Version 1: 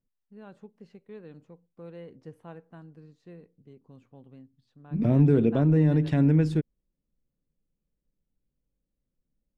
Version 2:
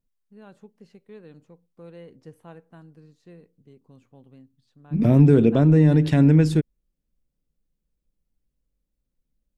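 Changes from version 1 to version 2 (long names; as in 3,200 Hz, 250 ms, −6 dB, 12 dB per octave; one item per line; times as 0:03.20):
second voice +5.5 dB
master: add high-shelf EQ 5,500 Hz +11 dB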